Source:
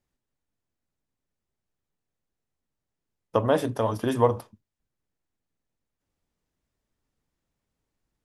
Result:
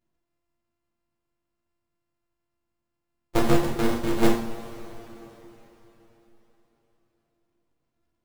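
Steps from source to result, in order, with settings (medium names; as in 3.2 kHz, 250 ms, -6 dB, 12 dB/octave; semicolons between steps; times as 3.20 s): sorted samples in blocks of 128 samples; full-wave rectifier; two-slope reverb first 0.42 s, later 4 s, from -18 dB, DRR -2.5 dB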